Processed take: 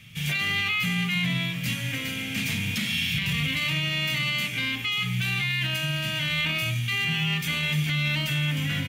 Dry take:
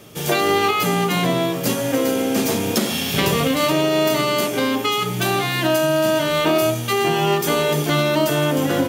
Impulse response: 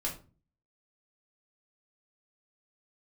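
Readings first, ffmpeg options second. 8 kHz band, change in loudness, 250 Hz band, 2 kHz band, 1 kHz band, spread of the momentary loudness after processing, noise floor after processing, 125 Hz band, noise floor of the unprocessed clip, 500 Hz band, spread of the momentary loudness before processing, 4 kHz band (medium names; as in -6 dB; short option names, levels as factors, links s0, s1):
-11.0 dB, -6.5 dB, -11.0 dB, -1.0 dB, -18.0 dB, 4 LU, -32 dBFS, -2.0 dB, -25 dBFS, -25.5 dB, 3 LU, -2.5 dB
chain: -af "firequalizer=gain_entry='entry(150,0);entry(360,-28);entry(1200,-15);entry(2200,5);entry(4900,-9);entry(13000,-12)':delay=0.05:min_phase=1,alimiter=limit=0.133:level=0:latency=1:release=11"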